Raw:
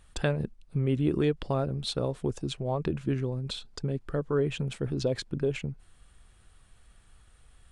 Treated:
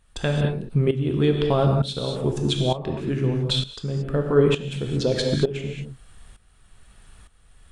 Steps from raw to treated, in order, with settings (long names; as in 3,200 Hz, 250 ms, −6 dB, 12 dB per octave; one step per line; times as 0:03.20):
reverb whose tail is shaped and stops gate 250 ms flat, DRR 2.5 dB
dynamic equaliser 3,400 Hz, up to +6 dB, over −55 dBFS, Q 3.8
shaped tremolo saw up 1.1 Hz, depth 80%
level +9 dB